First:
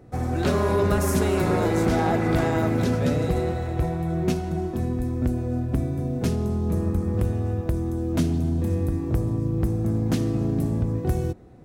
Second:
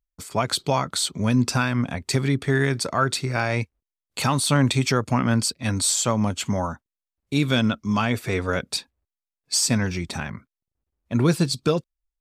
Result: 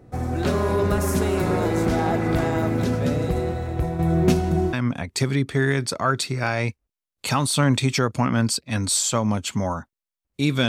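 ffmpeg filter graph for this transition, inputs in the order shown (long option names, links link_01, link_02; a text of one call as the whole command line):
ffmpeg -i cue0.wav -i cue1.wav -filter_complex "[0:a]asettb=1/sr,asplit=3[link_01][link_02][link_03];[link_01]atrim=end=3.994[link_04];[link_02]atrim=start=3.99:end=4.73,asetpts=PTS-STARTPTS,afade=type=in:duration=0.004:curve=qsin,afade=type=out:start_time=0.736:duration=0.004:curve=qsin,acontrast=48[link_05];[link_03]atrim=start=4.726[link_06];[link_04][link_05]acrossfade=duration=0.004:curve1=hsin:curve2=qsin[link_07];[link_07][link_06]acrossfade=duration=0.004:curve1=qsin:curve2=hsin,apad=whole_dur=10.68,atrim=end=10.68,atrim=end=4.732[link_08];[1:a]atrim=start=1.658:end=7.61[link_09];[link_08][link_09]acrossfade=duration=0.004:curve1=hsin:curve2=hsin" out.wav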